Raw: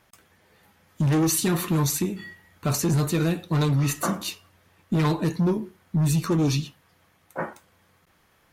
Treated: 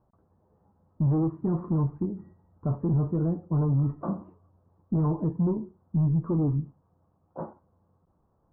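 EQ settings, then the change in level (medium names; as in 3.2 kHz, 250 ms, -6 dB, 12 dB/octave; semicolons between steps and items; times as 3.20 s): steep low-pass 1.1 kHz 36 dB/octave; distance through air 99 m; bass shelf 260 Hz +7 dB; -7.0 dB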